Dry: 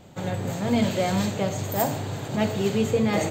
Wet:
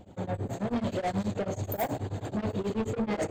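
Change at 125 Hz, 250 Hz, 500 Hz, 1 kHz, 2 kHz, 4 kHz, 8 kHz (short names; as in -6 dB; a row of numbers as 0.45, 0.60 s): -6.0, -6.5, -6.5, -5.5, -9.0, -12.5, -12.0 dB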